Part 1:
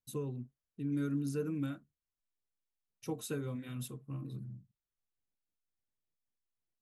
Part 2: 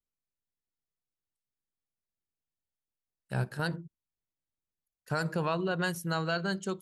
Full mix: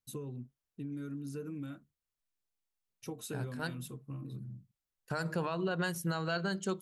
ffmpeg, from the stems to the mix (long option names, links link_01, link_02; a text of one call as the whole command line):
ffmpeg -i stem1.wav -i stem2.wav -filter_complex "[0:a]acompressor=threshold=-39dB:ratio=6,volume=1dB,asplit=2[link_01][link_02];[1:a]bandreject=frequency=50:width_type=h:width=6,bandreject=frequency=100:width_type=h:width=6,bandreject=frequency=150:width_type=h:width=6,agate=range=-33dB:threshold=-48dB:ratio=3:detection=peak,volume=2dB[link_03];[link_02]apad=whole_len=300684[link_04];[link_03][link_04]sidechaincompress=threshold=-49dB:ratio=10:attack=7.8:release=115[link_05];[link_01][link_05]amix=inputs=2:normalize=0,alimiter=level_in=0.5dB:limit=-24dB:level=0:latency=1:release=190,volume=-0.5dB" out.wav